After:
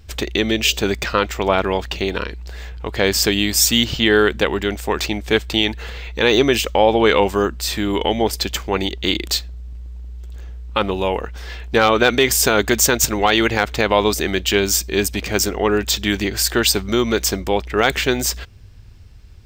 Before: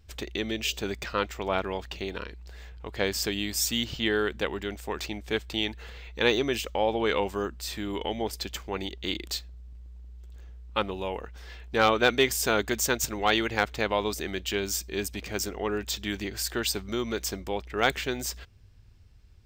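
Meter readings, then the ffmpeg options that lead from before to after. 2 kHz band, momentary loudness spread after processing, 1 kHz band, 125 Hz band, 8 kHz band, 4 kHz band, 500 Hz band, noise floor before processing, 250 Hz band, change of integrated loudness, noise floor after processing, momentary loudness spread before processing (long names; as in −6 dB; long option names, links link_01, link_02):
+10.0 dB, 15 LU, +10.0 dB, +12.0 dB, +12.5 dB, +11.5 dB, +11.0 dB, −52 dBFS, +11.5 dB, +11.0 dB, −39 dBFS, 17 LU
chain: -af "alimiter=level_in=13.5dB:limit=-1dB:release=50:level=0:latency=1,volume=-1dB"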